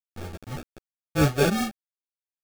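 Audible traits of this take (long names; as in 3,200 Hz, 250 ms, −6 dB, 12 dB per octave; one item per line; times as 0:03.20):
a quantiser's noise floor 6 bits, dither none
tremolo triangle 5.8 Hz, depth 65%
aliases and images of a low sample rate 1,000 Hz, jitter 0%
a shimmering, thickened sound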